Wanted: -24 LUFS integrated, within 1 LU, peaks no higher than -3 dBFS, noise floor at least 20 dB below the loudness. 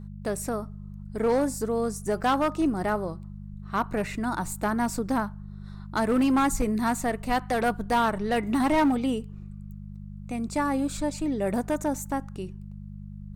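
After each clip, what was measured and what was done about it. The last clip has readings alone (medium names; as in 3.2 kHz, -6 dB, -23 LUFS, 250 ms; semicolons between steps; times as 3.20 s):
clipped samples 1.1%; clipping level -17.5 dBFS; hum 50 Hz; highest harmonic 200 Hz; hum level -38 dBFS; loudness -27.0 LUFS; peak level -17.5 dBFS; loudness target -24.0 LUFS
-> clip repair -17.5 dBFS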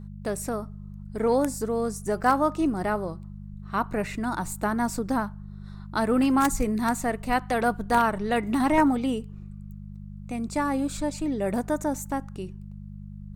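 clipped samples 0.0%; hum 50 Hz; highest harmonic 200 Hz; hum level -38 dBFS
-> de-hum 50 Hz, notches 4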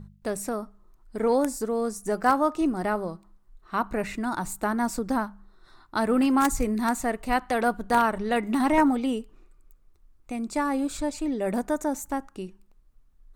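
hum not found; loudness -26.5 LUFS; peak level -8.5 dBFS; loudness target -24.0 LUFS
-> trim +2.5 dB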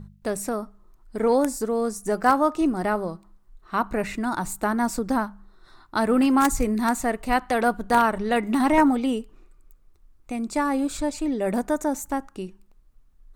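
loudness -24.0 LUFS; peak level -6.0 dBFS; noise floor -56 dBFS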